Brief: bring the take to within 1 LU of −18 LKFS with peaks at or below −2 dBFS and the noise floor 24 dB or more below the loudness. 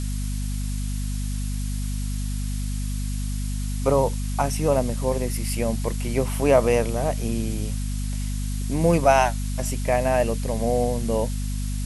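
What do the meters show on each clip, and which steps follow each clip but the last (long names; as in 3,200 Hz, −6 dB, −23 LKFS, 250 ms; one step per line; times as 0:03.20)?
mains hum 50 Hz; hum harmonics up to 250 Hz; level of the hum −24 dBFS; background noise floor −27 dBFS; target noise floor −49 dBFS; integrated loudness −24.5 LKFS; sample peak −4.0 dBFS; target loudness −18.0 LKFS
→ mains-hum notches 50/100/150/200/250 Hz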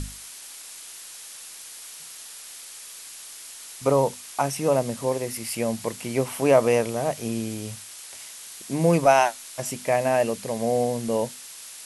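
mains hum none found; background noise floor −42 dBFS; target noise floor −48 dBFS
→ broadband denoise 6 dB, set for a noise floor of −42 dBFS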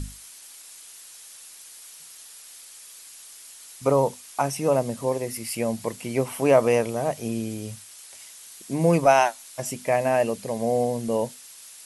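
background noise floor −46 dBFS; target noise floor −48 dBFS
→ broadband denoise 6 dB, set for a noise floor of −46 dBFS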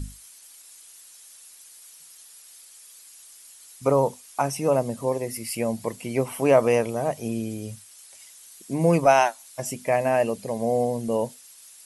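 background noise floor −49 dBFS; integrated loudness −24.5 LKFS; sample peak −5.5 dBFS; target loudness −18.0 LKFS
→ level +6.5 dB
brickwall limiter −2 dBFS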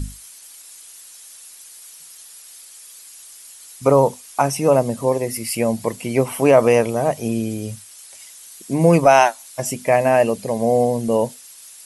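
integrated loudness −18.0 LKFS; sample peak −2.0 dBFS; background noise floor −43 dBFS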